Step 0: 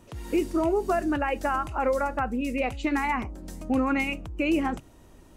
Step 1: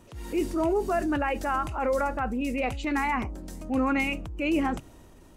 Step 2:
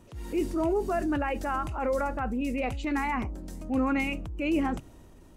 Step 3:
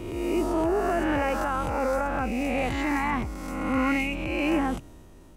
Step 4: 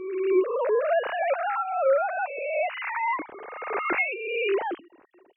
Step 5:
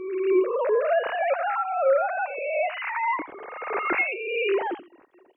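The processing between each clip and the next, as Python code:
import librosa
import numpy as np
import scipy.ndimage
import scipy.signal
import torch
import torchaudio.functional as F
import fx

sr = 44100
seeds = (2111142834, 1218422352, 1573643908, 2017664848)

y1 = fx.transient(x, sr, attack_db=-6, sustain_db=3)
y2 = fx.low_shelf(y1, sr, hz=420.0, db=4.0)
y2 = F.gain(torch.from_numpy(y2), -3.5).numpy()
y3 = fx.spec_swells(y2, sr, rise_s=1.46)
y4 = fx.sine_speech(y3, sr)
y5 = y4 + 10.0 ** (-15.0 / 20.0) * np.pad(y4, (int(86 * sr / 1000.0), 0))[:len(y4)]
y5 = F.gain(torch.from_numpy(y5), 1.0).numpy()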